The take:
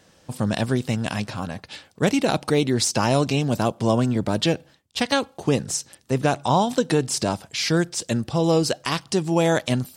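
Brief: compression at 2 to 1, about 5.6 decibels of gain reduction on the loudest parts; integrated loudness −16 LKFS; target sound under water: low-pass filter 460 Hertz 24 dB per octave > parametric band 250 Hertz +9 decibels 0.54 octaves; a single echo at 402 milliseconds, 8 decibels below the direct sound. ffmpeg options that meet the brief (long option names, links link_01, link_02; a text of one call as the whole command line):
ffmpeg -i in.wav -af "acompressor=threshold=-25dB:ratio=2,lowpass=frequency=460:width=0.5412,lowpass=frequency=460:width=1.3066,equalizer=frequency=250:width_type=o:width=0.54:gain=9,aecho=1:1:402:0.398,volume=9dB" out.wav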